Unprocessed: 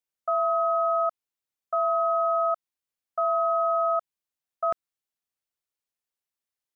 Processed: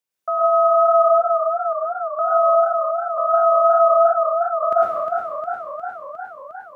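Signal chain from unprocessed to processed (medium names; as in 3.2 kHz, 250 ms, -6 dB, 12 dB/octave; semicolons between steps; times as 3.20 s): high-pass 90 Hz; 1.08–2.19 s: inverted gate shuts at -32 dBFS, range -33 dB; plate-style reverb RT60 1.2 s, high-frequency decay 1×, pre-delay 90 ms, DRR -5 dB; modulated delay 355 ms, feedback 69%, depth 51 cents, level -7 dB; trim +3 dB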